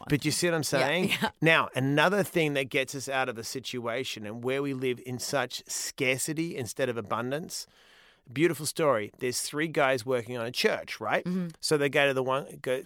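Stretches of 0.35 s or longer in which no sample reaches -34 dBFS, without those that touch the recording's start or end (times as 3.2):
7.62–8.36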